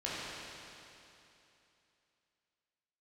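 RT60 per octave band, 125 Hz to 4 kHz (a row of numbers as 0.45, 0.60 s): 2.9, 2.9, 2.9, 2.9, 2.9, 2.9 s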